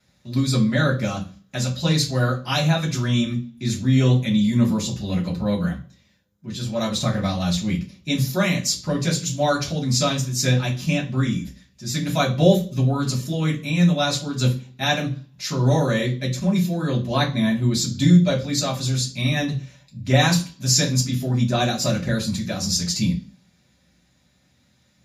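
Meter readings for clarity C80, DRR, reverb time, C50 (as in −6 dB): 17.0 dB, −6.0 dB, 0.40 s, 11.5 dB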